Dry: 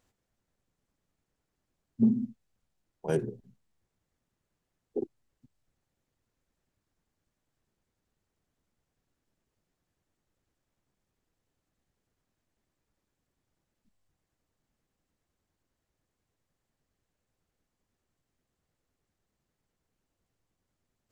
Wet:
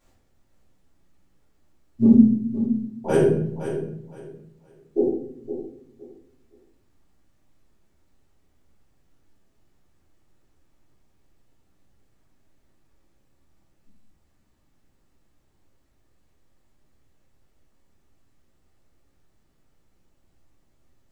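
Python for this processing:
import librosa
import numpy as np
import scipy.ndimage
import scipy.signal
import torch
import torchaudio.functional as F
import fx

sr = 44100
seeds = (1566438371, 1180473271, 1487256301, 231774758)

y = fx.echo_feedback(x, sr, ms=515, feedback_pct=23, wet_db=-10.5)
y = fx.room_shoebox(y, sr, seeds[0], volume_m3=130.0, walls='mixed', distance_m=3.0)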